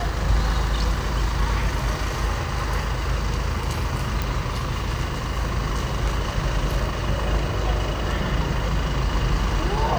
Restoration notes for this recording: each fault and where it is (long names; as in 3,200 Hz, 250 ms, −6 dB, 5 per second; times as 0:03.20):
0:04.22: click